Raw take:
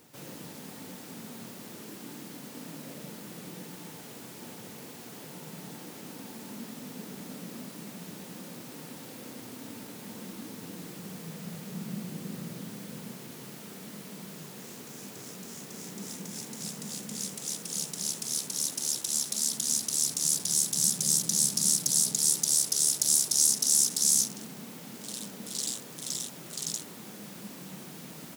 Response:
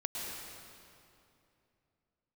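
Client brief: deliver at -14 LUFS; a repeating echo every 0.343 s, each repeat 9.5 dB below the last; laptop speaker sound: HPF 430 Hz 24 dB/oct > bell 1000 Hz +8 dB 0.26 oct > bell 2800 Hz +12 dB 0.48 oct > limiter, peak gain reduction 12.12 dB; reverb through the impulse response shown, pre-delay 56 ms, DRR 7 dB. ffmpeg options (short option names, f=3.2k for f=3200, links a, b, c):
-filter_complex "[0:a]aecho=1:1:343|686|1029|1372:0.335|0.111|0.0365|0.012,asplit=2[a][b];[1:a]atrim=start_sample=2205,adelay=56[c];[b][c]afir=irnorm=-1:irlink=0,volume=-10dB[d];[a][d]amix=inputs=2:normalize=0,highpass=f=430:w=0.5412,highpass=f=430:w=1.3066,equalizer=f=1k:t=o:w=0.26:g=8,equalizer=f=2.8k:t=o:w=0.48:g=12,volume=20dB,alimiter=limit=-1.5dB:level=0:latency=1"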